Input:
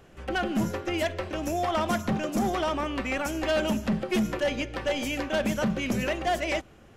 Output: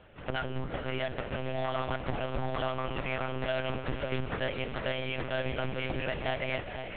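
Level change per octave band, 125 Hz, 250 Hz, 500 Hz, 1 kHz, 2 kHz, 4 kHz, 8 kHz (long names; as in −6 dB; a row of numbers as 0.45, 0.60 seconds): −1.0 dB, −11.0 dB, −5.0 dB, −6.0 dB, −4.0 dB, −4.5 dB, below −40 dB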